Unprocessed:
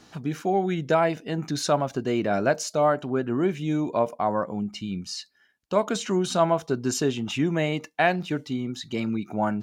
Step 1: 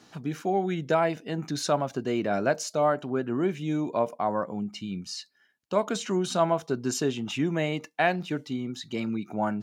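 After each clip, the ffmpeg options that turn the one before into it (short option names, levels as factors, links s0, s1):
-af "highpass=99,volume=0.75"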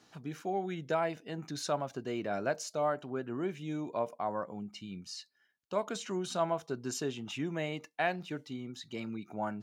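-af "equalizer=f=220:w=1:g=-3,volume=0.447"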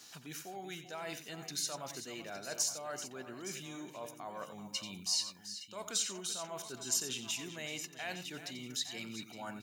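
-af "areverse,acompressor=threshold=0.00891:ratio=6,areverse,crystalizer=i=9.5:c=0,aecho=1:1:89|383|864|865:0.282|0.251|0.112|0.2,volume=0.631"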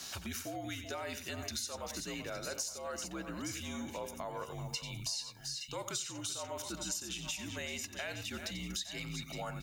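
-af "acompressor=threshold=0.00398:ratio=5,afreqshift=-67,volume=3.16"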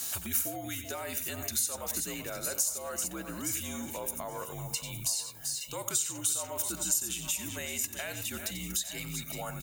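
-af "aecho=1:1:846|1692|2538:0.0944|0.033|0.0116,aexciter=amount=4.8:drive=6.6:freq=7400,volume=1.26"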